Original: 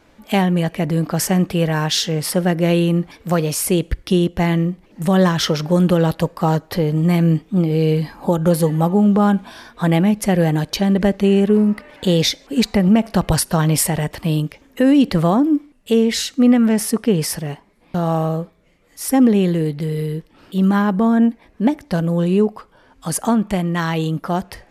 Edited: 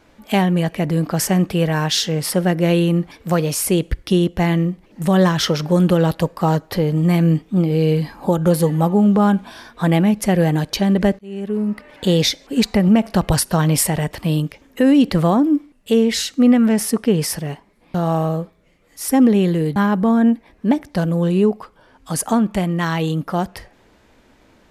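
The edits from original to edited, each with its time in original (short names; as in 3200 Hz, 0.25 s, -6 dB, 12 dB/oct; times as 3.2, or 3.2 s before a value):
11.19–12.04 fade in
19.76–20.72 cut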